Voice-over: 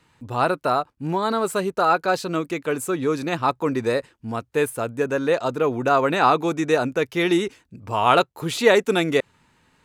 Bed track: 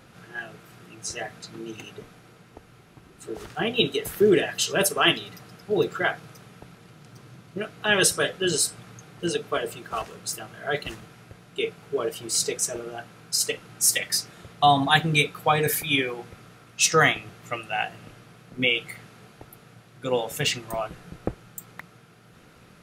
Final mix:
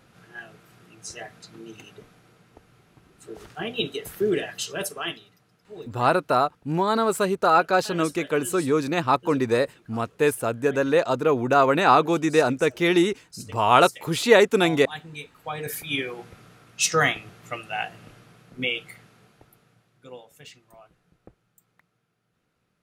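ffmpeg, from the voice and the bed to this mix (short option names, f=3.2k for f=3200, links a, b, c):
-filter_complex "[0:a]adelay=5650,volume=0.5dB[a];[1:a]volume=10.5dB,afade=t=out:st=4.51:d=0.84:silence=0.237137,afade=t=in:st=15.34:d=0.86:silence=0.16788,afade=t=out:st=18.15:d=2.13:silence=0.105925[b];[a][b]amix=inputs=2:normalize=0"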